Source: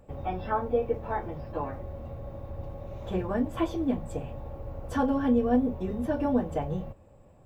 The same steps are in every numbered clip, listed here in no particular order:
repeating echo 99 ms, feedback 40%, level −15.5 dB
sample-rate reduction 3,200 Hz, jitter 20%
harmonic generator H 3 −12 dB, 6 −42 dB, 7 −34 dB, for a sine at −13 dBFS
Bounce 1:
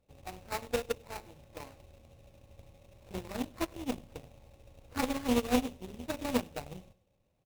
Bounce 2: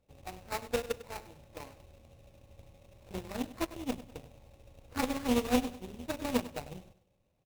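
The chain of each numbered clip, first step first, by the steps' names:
sample-rate reduction, then repeating echo, then harmonic generator
sample-rate reduction, then harmonic generator, then repeating echo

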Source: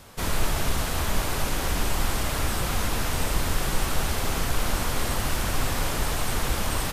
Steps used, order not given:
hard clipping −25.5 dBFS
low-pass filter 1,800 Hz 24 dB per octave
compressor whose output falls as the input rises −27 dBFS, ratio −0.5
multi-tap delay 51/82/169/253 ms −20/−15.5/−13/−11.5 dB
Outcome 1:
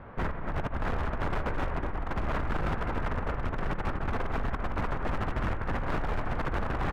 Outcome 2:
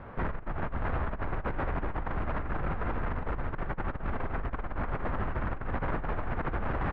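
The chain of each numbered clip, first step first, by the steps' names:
low-pass filter, then compressor whose output falls as the input rises, then multi-tap delay, then hard clipping
multi-tap delay, then compressor whose output falls as the input rises, then hard clipping, then low-pass filter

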